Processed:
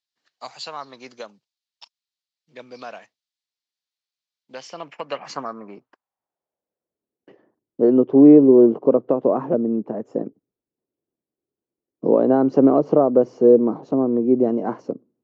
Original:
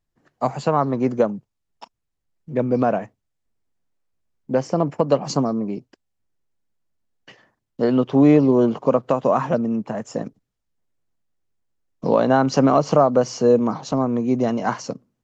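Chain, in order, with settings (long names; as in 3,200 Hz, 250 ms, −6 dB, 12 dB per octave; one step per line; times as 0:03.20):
band-pass filter sweep 4,200 Hz → 360 Hz, 0:04.42–0:07.14
level +7.5 dB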